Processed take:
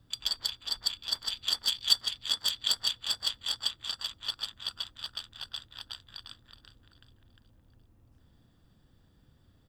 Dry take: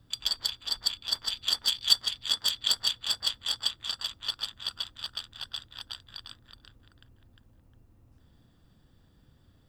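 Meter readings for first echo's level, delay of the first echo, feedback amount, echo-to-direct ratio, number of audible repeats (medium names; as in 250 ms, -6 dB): -22.0 dB, 771 ms, 23%, -22.0 dB, 2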